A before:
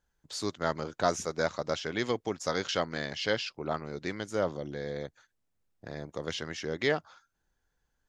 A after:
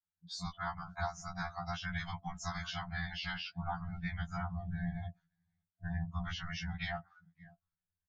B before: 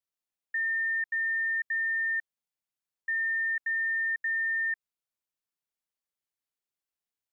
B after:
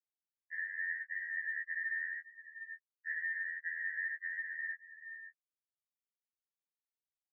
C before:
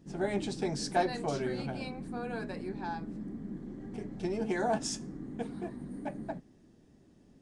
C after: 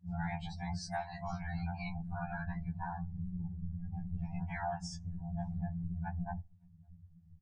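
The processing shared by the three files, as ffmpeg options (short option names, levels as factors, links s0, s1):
-filter_complex "[0:a]highpass=f=44:p=1,asubboost=boost=5.5:cutoff=110,asplit=2[s0][s1];[s1]aecho=0:1:560:0.0631[s2];[s0][s2]amix=inputs=2:normalize=0,afftfilt=real='hypot(re,im)*cos(2*PI*random(0))':imag='hypot(re,im)*sin(2*PI*random(1))':win_size=512:overlap=0.75,afftdn=nr=28:nf=-49,afftfilt=real='re*(1-between(b*sr/4096,210,680))':imag='im*(1-between(b*sr/4096,210,680))':win_size=4096:overlap=0.75,acompressor=threshold=0.00398:ratio=10,lowpass=f=2800:p=1,afftfilt=real='re*2*eq(mod(b,4),0)':imag='im*2*eq(mod(b,4),0)':win_size=2048:overlap=0.75,volume=5.96"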